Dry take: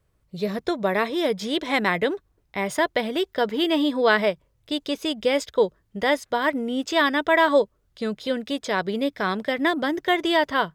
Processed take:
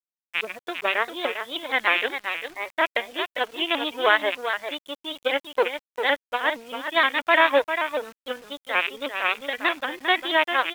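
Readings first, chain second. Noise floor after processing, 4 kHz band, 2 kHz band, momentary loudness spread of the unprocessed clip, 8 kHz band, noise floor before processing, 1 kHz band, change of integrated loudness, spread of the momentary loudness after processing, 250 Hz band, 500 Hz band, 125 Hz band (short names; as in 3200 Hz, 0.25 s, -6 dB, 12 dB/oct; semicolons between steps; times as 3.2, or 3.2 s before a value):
under -85 dBFS, +1.5 dB, +3.0 dB, 10 LU, n/a, -68 dBFS, +0.5 dB, -0.5 dB, 11 LU, -11.0 dB, -4.0 dB, under -20 dB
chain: rattling part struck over -42 dBFS, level -12 dBFS; spectral noise reduction 27 dB; added harmonics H 3 -22 dB, 4 -43 dB, 6 -36 dB, 7 -23 dB, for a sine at -6.5 dBFS; downsampling 8000 Hz; HPF 390 Hz 12 dB/oct; bell 2400 Hz +5 dB 2.1 oct; on a send: echo 0.399 s -8 dB; on the sum: bit-crush 8-bit; shaped vibrato saw up 6.4 Hz, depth 100 cents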